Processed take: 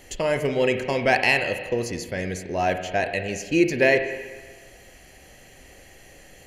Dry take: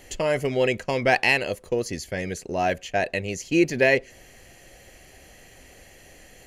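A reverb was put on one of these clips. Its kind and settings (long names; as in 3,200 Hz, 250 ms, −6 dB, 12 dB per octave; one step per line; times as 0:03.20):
spring reverb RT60 1.4 s, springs 34/43 ms, chirp 25 ms, DRR 7 dB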